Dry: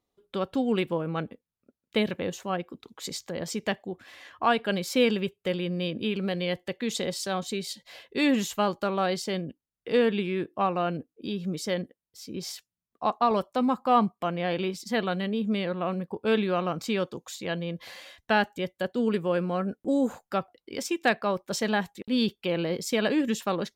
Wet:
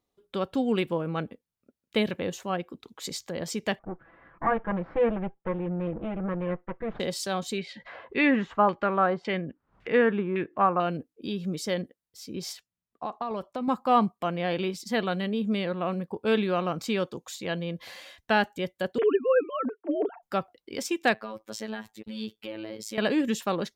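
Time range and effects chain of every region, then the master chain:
3.79–7.00 s: comb filter that takes the minimum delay 6 ms + low-pass 1.6 kHz 24 dB/octave
7.58–10.80 s: LFO low-pass saw down 1.8 Hz 980–2500 Hz + upward compressor, threshold -35 dBFS
12.53–13.68 s: treble shelf 5.1 kHz -9.5 dB + compression, threshold -28 dBFS
18.98–20.23 s: formants replaced by sine waves + comb 4.4 ms, depth 69%
21.14–22.98 s: compression 2:1, threshold -36 dBFS + robot voice 109 Hz
whole clip: none

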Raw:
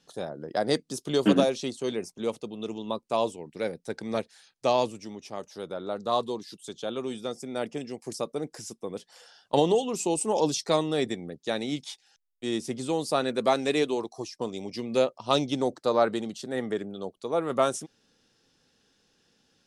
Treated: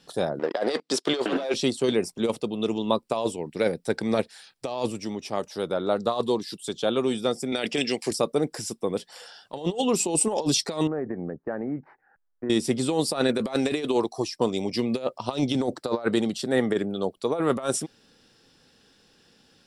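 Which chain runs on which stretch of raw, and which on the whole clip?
0.39–1.54 s: waveshaping leveller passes 2 + band-pass 430–5400 Hz + compression 2:1, threshold -23 dBFS
7.52–8.11 s: frequency weighting D + compressor with a negative ratio -32 dBFS, ratio -0.5
10.87–12.50 s: elliptic low-pass 1.7 kHz, stop band 50 dB + compression 4:1, threshold -35 dBFS
whole clip: band-stop 6.4 kHz, Q 6.7; compressor with a negative ratio -28 dBFS, ratio -0.5; trim +5.5 dB

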